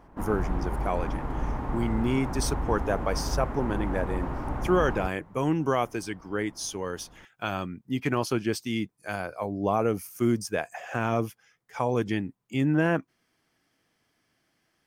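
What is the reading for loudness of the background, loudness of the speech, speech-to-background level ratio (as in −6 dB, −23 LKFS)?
−33.0 LKFS, −29.5 LKFS, 3.5 dB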